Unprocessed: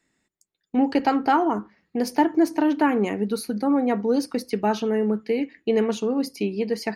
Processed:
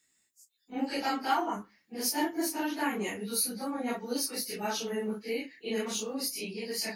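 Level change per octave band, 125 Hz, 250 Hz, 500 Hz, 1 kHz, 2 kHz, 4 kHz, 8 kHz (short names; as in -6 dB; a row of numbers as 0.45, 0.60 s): n/a, -12.5 dB, -12.0 dB, -9.0 dB, -4.5 dB, +2.0 dB, +7.0 dB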